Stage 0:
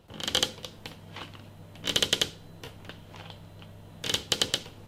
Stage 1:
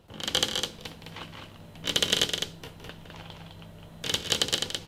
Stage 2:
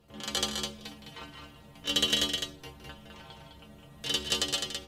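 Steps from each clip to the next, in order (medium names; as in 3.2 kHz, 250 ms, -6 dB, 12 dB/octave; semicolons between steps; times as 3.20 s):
loudspeakers at several distances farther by 56 m -11 dB, 71 m -5 dB
inharmonic resonator 68 Hz, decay 0.44 s, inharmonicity 0.008; trim +6.5 dB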